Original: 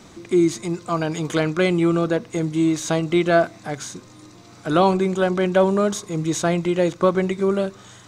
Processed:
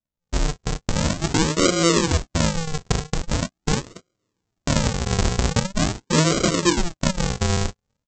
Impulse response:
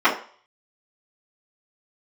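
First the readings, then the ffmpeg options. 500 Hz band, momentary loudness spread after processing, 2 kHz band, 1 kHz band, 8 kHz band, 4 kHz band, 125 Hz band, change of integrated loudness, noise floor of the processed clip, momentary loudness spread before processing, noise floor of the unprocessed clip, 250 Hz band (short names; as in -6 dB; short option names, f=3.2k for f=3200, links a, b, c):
-6.0 dB, 9 LU, 0.0 dB, -2.5 dB, +7.5 dB, +7.5 dB, +3.0 dB, -1.5 dB, -83 dBFS, 10 LU, -46 dBFS, -3.0 dB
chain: -filter_complex "[0:a]highpass=59,aecho=1:1:1.9:0.68,acompressor=threshold=-27dB:ratio=16,asplit=2[a][b];[b]aecho=0:1:38|54:0.447|0.2[c];[a][c]amix=inputs=2:normalize=0,acrossover=split=530[d][e];[d]aeval=exprs='val(0)*(1-0.5/2+0.5/2*cos(2*PI*2.1*n/s))':c=same[f];[e]aeval=exprs='val(0)*(1-0.5/2-0.5/2*cos(2*PI*2.1*n/s))':c=same[g];[f][g]amix=inputs=2:normalize=0,equalizer=f=5.3k:t=o:w=1.2:g=-3.5,aresample=16000,acrusher=samples=36:mix=1:aa=0.000001:lfo=1:lforange=36:lforate=0.43,aresample=44100,bass=f=250:g=-3,treble=f=4k:g=9,agate=range=-43dB:threshold=-37dB:ratio=16:detection=peak,dynaudnorm=f=210:g=3:m=15.5dB"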